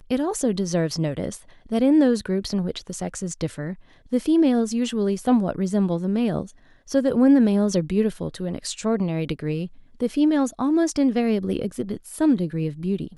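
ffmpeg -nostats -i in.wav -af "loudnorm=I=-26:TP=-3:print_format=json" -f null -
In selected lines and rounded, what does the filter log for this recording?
"input_i" : "-22.9",
"input_tp" : "-7.3",
"input_lra" : "2.1",
"input_thresh" : "-33.1",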